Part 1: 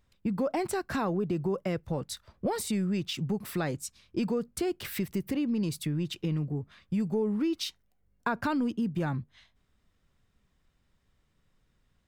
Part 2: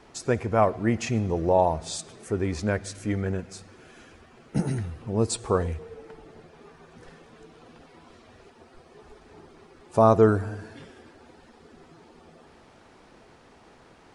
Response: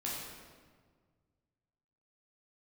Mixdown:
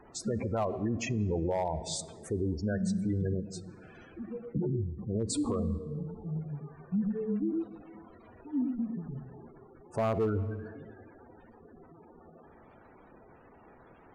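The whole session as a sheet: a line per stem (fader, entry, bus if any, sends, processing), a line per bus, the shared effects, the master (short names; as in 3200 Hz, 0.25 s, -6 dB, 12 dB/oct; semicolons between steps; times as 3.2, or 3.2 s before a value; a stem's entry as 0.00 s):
-6.0 dB, 0.00 s, send -12.5 dB, echo send -3 dB, compressor, threshold -31 dBFS, peak gain reduction 6.5 dB; spectral expander 4:1
-2.5 dB, 0.00 s, send -20 dB, no echo send, spectral gate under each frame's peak -15 dB strong; hard clip -13.5 dBFS, distortion -17 dB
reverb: on, RT60 1.6 s, pre-delay 10 ms
echo: echo 0.108 s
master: limiter -23.5 dBFS, peak gain reduction 10 dB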